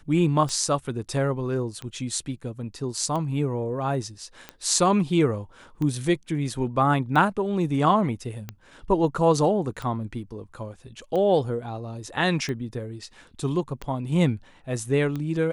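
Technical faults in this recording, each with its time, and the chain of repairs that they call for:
scratch tick 45 rpm −19 dBFS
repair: click removal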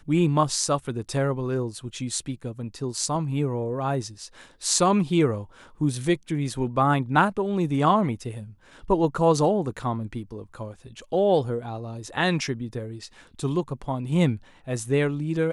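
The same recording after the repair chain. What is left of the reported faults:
none of them is left

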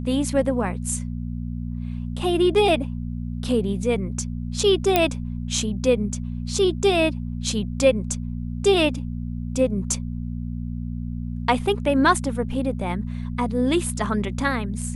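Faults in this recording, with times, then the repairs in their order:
mains hum 60 Hz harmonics 4 −29 dBFS
0:04.96: click −3 dBFS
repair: click removal
hum removal 60 Hz, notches 4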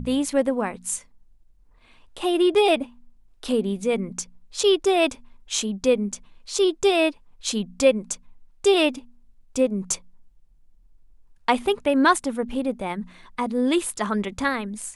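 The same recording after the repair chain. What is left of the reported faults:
none of them is left

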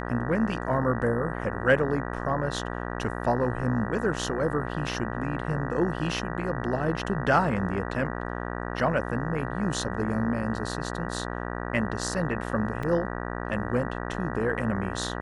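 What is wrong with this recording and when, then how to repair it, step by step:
mains buzz 60 Hz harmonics 32 −33 dBFS
0:12.83: drop-out 3.4 ms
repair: hum removal 60 Hz, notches 32
repair the gap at 0:12.83, 3.4 ms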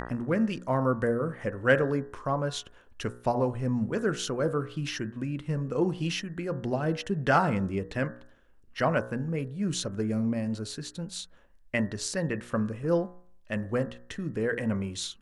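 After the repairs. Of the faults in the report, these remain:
none of them is left

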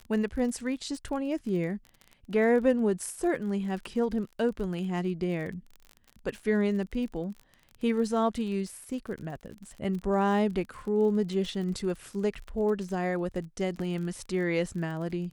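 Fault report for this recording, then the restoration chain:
surface crackle 35 per second −37 dBFS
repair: click removal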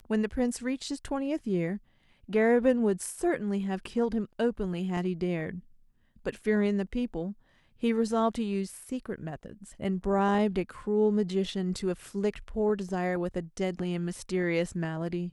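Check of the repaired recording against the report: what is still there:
none of them is left

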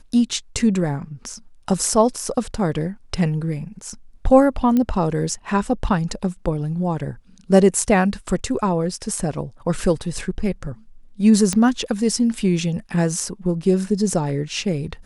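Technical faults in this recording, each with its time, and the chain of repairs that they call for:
0:04.77: click −10 dBFS
0:11.53: click −7 dBFS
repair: click removal

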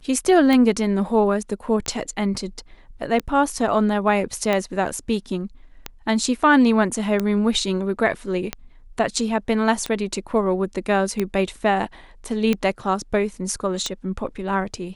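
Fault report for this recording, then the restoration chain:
scratch tick 45 rpm −9 dBFS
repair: click removal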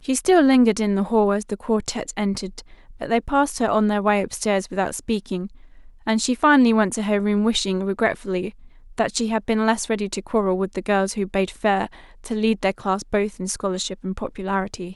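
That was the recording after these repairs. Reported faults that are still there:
none of them is left

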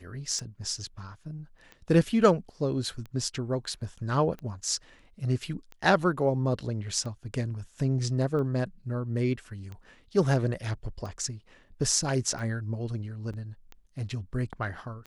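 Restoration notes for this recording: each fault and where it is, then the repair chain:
scratch tick 45 rpm −28 dBFS
0:13.33–0:13.34: drop-out 6.8 ms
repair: click removal
repair the gap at 0:13.33, 6.8 ms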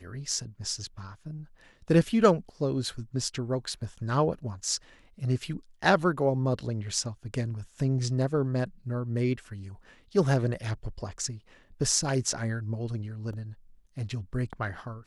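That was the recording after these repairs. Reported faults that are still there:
none of them is left

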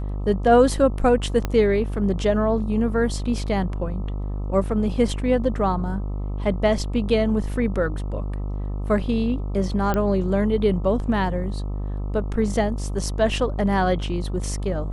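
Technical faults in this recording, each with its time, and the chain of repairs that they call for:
mains buzz 50 Hz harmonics 26 −27 dBFS
0:01.45: click −11 dBFS
0:09.94: click −11 dBFS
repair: click removal
hum removal 50 Hz, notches 26

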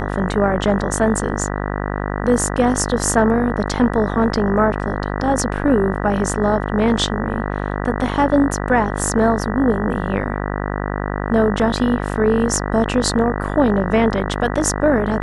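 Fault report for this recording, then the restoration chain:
mains buzz 50 Hz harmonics 39 −23 dBFS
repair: hum removal 50 Hz, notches 39

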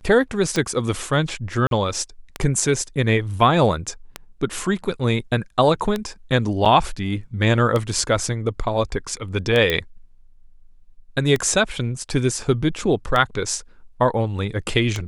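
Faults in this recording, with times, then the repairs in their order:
scratch tick 33 1/3 rpm −9 dBFS
0:01.67–0:01.71: drop-out 42 ms
0:06.65–0:06.66: drop-out 7 ms
0:09.70: click −7 dBFS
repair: click removal
repair the gap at 0:01.67, 42 ms
repair the gap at 0:06.65, 7 ms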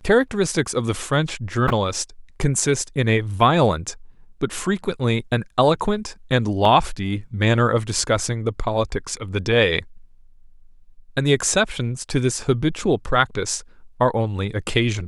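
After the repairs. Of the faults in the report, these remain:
none of them is left

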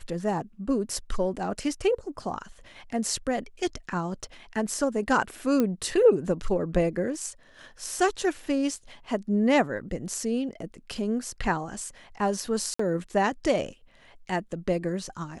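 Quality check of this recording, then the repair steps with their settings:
0:05.60: click −12 dBFS
0:12.74–0:12.79: drop-out 54 ms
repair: click removal
repair the gap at 0:12.74, 54 ms

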